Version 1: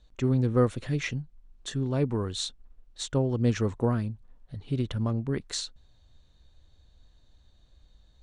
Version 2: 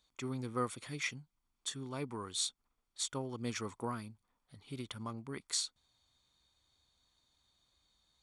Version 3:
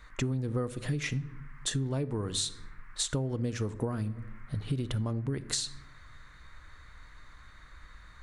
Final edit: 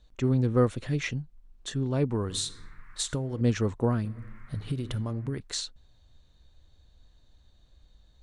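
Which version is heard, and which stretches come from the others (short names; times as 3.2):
1
2.3–3.41 from 3
4.05–5.4 from 3
not used: 2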